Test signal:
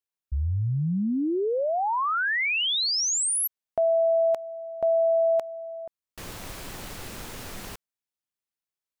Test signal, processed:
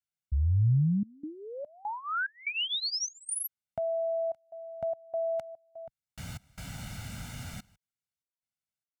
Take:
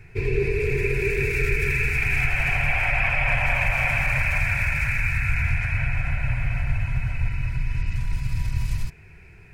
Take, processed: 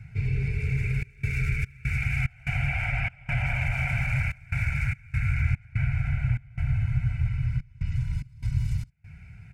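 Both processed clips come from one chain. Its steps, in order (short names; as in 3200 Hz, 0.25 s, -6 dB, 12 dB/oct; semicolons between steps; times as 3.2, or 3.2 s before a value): HPF 44 Hz 12 dB/oct; high shelf 3800 Hz -10 dB; comb 1.4 ms, depth 81%; step gate "xxxxx.xx.xx.xxx." 73 bpm -24 dB; graphic EQ 125/250/500/1000/8000 Hz +5/+3/-12/-4/+5 dB; in parallel at -3 dB: compressor, threshold -33 dBFS; on the sum: gain -7 dB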